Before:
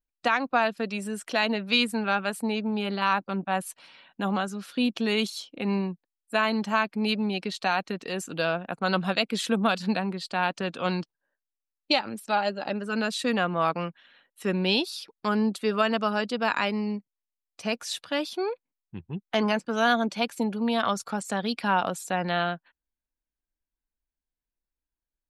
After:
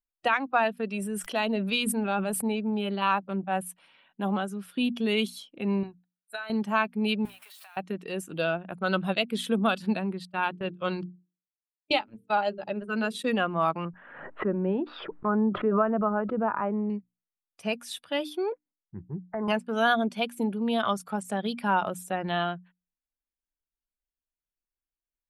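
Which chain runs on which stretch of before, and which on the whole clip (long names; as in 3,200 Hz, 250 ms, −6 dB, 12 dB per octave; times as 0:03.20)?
0:00.93–0:02.60: dynamic equaliser 1,900 Hz, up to −5 dB, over −35 dBFS, Q 0.82 + level that may fall only so fast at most 30 dB per second
0:05.83–0:06.50: guitar amp tone stack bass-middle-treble 10-0-10 + downward compressor 8 to 1, threshold −36 dBFS + hollow resonant body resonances 370/720/1,400/3,900 Hz, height 16 dB, ringing for 20 ms
0:07.25–0:07.77: converter with a step at zero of −31 dBFS + Bessel high-pass filter 1,100 Hz, order 4 + downward compressor 20 to 1, threshold −39 dBFS
0:10.25–0:13.24: noise gate −34 dBFS, range −30 dB + mains-hum notches 50/100/150/200/250/300/350/400/450 Hz
0:13.85–0:16.90: low-pass filter 1,500 Hz 24 dB per octave + background raised ahead of every attack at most 46 dB per second
0:18.52–0:19.48: Butterworth low-pass 2,000 Hz 72 dB per octave + downward compressor 5 to 1, threshold −26 dBFS
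whole clip: mains-hum notches 60/120/180/240/300 Hz; noise reduction from a noise print of the clip's start 7 dB; flat-topped bell 5,600 Hz −9.5 dB 1.1 octaves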